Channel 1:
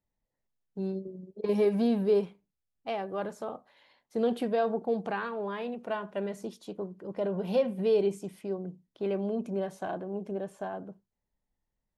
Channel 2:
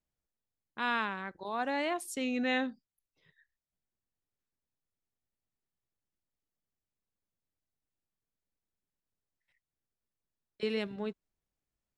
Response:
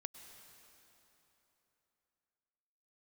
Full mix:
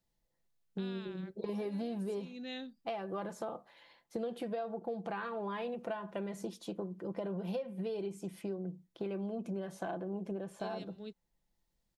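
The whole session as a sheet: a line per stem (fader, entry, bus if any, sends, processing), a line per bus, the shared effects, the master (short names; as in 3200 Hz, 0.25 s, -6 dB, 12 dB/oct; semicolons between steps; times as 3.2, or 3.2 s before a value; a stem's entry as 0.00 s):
+1.0 dB, 0.00 s, no send, comb 5.9 ms, depth 44%
+2.0 dB, 0.00 s, no send, graphic EQ 1000/2000/4000 Hz -11/-7/+8 dB; auto duck -12 dB, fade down 1.35 s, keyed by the first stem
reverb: off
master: compressor 10:1, threshold -35 dBFS, peak gain reduction 17.5 dB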